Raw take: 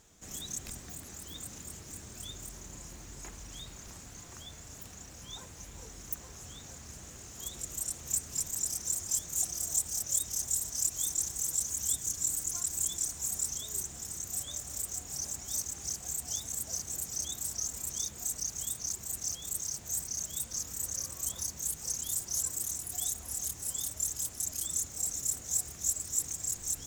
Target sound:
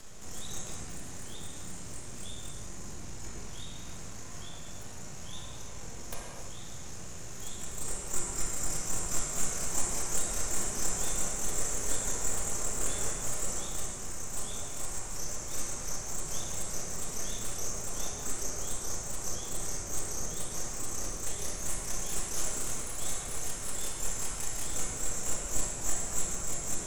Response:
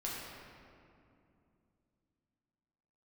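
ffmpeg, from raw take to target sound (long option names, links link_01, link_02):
-filter_complex "[0:a]aeval=exprs='max(val(0),0)':channel_layout=same,acompressor=mode=upward:threshold=-41dB:ratio=2.5[link_01];[1:a]atrim=start_sample=2205,afade=type=out:start_time=0.23:duration=0.01,atrim=end_sample=10584,asetrate=22491,aresample=44100[link_02];[link_01][link_02]afir=irnorm=-1:irlink=0"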